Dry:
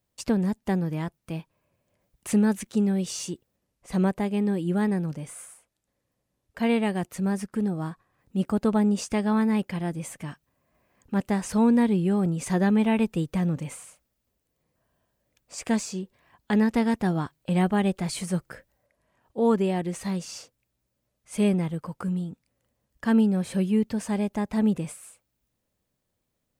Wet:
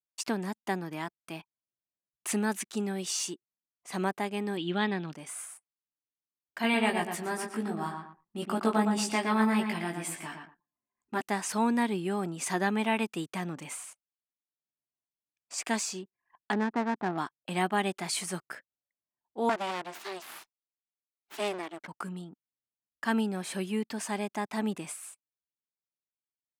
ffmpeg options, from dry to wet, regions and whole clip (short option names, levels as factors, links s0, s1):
-filter_complex "[0:a]asettb=1/sr,asplit=3[s0][s1][s2];[s0]atrim=end=4.574[s3];[s1]atrim=start=4.57:end=5.13,asetpts=PTS-STARTPTS,afade=t=in:d=0.004:c=qsin,afade=t=out:st=0.556:d=0.004:c=qsin,lowpass=f=3500:t=q:w=4.6,lowshelf=f=150:g=7[s4];[s2]atrim=start=5.126[s5];[s3][s4]acrossfade=d=0.004:c1=hsin:c2=qsin[s6];[s6][s5]acrossfade=d=0.004:c1=qsin:c2=hsin,asettb=1/sr,asplit=3[s7][s8][s9];[s7]atrim=end=6.624[s10];[s8]atrim=start=6.62:end=11.21,asetpts=PTS-STARTPTS,afade=t=in:d=0.004:c=qsin,afade=t=out:st=4.586:d=0.004:c=qsin,equalizer=f=6400:w=5.7:g=-6.5,asplit=2[s11][s12];[s12]adelay=18,volume=0.668[s13];[s11][s13]amix=inputs=2:normalize=0,atrim=end_sample=202419,asplit=2[s14][s15];[s15]adelay=115,lowpass=f=3100:p=1,volume=0.562,asplit=2[s16][s17];[s17]adelay=115,lowpass=f=3100:p=1,volume=0.32,asplit=2[s18][s19];[s19]adelay=115,lowpass=f=3100:p=1,volume=0.32,asplit=2[s20][s21];[s21]adelay=115,lowpass=f=3100:p=1,volume=0.32[s22];[s14][s16][s18][s20][s22]amix=inputs=5:normalize=0,atrim=end_sample=202419[s23];[s9]atrim=start=11.206[s24];[s10][s23]acrossfade=d=0.004:c1=hsin:c2=qsin[s25];[s25][s24]acrossfade=d=0.004:c1=qsin:c2=hsin,asettb=1/sr,asplit=3[s26][s27][s28];[s26]atrim=end=16.524[s29];[s27]atrim=start=16.52:end=17.18,asetpts=PTS-STARTPTS,afade=t=in:d=0.004:c=qsin,afade=t=out:st=0.656:d=0.004:c=qsin,lowpass=f=1700:w=0.5412,lowpass=f=1700:w=1.3066,adynamicsmooth=sensitivity=5:basefreq=1000[s30];[s28]atrim=start=17.176[s31];[s29][s30]acrossfade=d=0.004:c1=hsin:c2=qsin[s32];[s32][s31]acrossfade=d=0.004:c1=qsin:c2=hsin,asettb=1/sr,asplit=3[s33][s34][s35];[s33]atrim=end=19.494[s36];[s34]atrim=start=19.49:end=21.88,asetpts=PTS-STARTPTS,afade=t=in:d=0.004:c=qsin,afade=t=out:st=2.386:d=0.004:c=qsin,highpass=190,aeval=exprs='abs(val(0))':c=same,highshelf=f=9300:g=-9.5[s37];[s35]atrim=start=21.876[s38];[s36][s37]acrossfade=d=0.004:c1=hsin:c2=qsin[s39];[s39][s38]acrossfade=d=0.004:c1=qsin:c2=hsin,highpass=400,equalizer=f=510:t=o:w=0.39:g=-13,anlmdn=0.000631,volume=1.26"